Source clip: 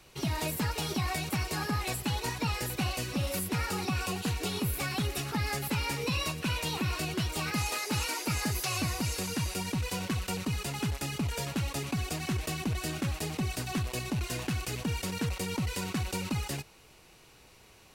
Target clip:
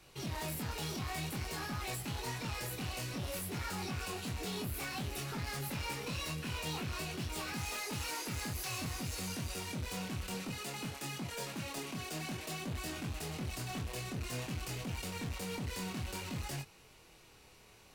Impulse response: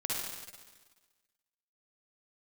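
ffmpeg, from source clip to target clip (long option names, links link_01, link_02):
-filter_complex "[0:a]asettb=1/sr,asplit=3[link_01][link_02][link_03];[link_01]atrim=end=10.344[link_04];[link_02]atrim=start=10.34:end=12.66,asetpts=PTS-STARTPTS,afade=type=in:duration=0.004:curve=qsin,afade=type=out:start_time=2.316:duration=0.004:curve=qsin,highpass=180[link_05];[link_03]atrim=start=12.656[link_06];[link_04][link_05]acrossfade=duration=0.004:curve1=hsin:curve2=qsin[link_07];[link_07][link_06]acrossfade=duration=0.004:curve1=qsin:curve2=hsin,volume=34dB,asoftclip=hard,volume=-34dB,flanger=delay=22.5:depth=3.7:speed=0.54"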